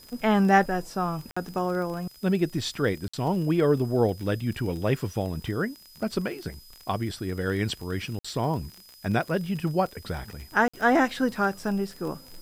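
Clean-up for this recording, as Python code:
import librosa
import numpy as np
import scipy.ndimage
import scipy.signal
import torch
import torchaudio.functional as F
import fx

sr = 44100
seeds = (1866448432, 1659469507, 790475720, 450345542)

y = fx.fix_declick_ar(x, sr, threshold=6.5)
y = fx.notch(y, sr, hz=5000.0, q=30.0)
y = fx.fix_interpolate(y, sr, at_s=(1.31, 3.08, 8.19, 10.68), length_ms=55.0)
y = fx.noise_reduce(y, sr, print_start_s=8.56, print_end_s=9.06, reduce_db=20.0)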